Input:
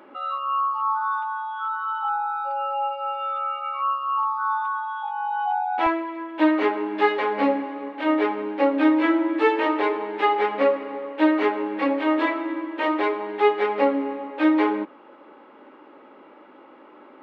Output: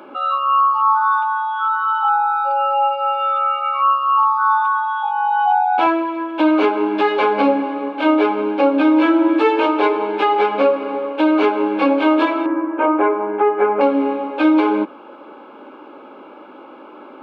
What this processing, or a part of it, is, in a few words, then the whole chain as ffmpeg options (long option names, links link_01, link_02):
PA system with an anti-feedback notch: -filter_complex "[0:a]highpass=frequency=150:width=0.5412,highpass=frequency=150:width=1.3066,asuperstop=centerf=1900:order=4:qfactor=4.6,alimiter=limit=-15dB:level=0:latency=1:release=168,asettb=1/sr,asplit=3[link_01][link_02][link_03];[link_01]atrim=end=12.464[link_04];[link_02]atrim=start=12.46:end=13.81,asetpts=PTS-STARTPTS,afade=type=in:duration=0.004:curve=qsin,afade=type=out:start_time=1.346:duration=0.004:curve=qsin,lowpass=frequency=1900:width=0.5412,lowpass=frequency=1900:width=1.3066[link_05];[link_03]atrim=start=13.806[link_06];[link_04][link_05]acrossfade=duration=0.004:curve1=hsin:curve2=qsin[link_07];[link_07][link_06]acrossfade=duration=0.004:curve1=qsin:curve2=hsin,volume=9dB"